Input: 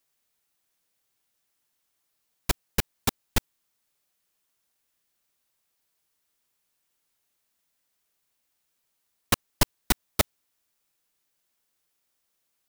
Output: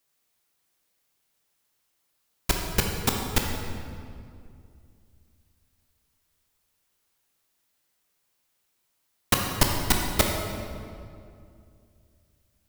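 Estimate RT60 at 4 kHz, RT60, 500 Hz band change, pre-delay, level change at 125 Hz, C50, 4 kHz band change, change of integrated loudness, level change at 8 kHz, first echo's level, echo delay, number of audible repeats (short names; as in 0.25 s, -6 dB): 1.5 s, 2.4 s, +4.0 dB, 15 ms, +4.5 dB, 2.5 dB, +3.0 dB, +2.0 dB, +2.5 dB, none, none, none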